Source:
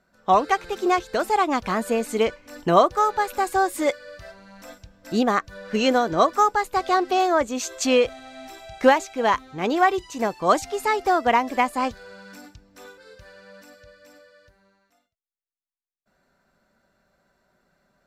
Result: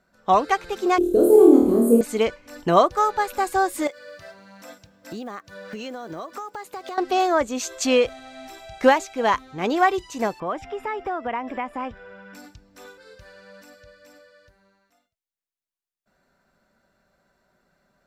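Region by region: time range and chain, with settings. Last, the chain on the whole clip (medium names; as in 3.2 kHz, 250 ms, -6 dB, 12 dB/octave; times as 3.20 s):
0.98–2.01 s: FFT filter 170 Hz 0 dB, 370 Hz +14 dB, 820 Hz -16 dB, 1.3 kHz -19 dB, 1.9 kHz -30 dB, 3.3 kHz -19 dB, 5.7 kHz -20 dB, 10 kHz +6 dB + flutter echo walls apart 4.4 m, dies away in 0.79 s
3.87–6.98 s: block-companded coder 7-bit + high-pass 130 Hz + compression 12:1, threshold -30 dBFS
10.40–12.35 s: compression 2.5:1, threshold -27 dBFS + Savitzky-Golay filter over 25 samples
whole clip: none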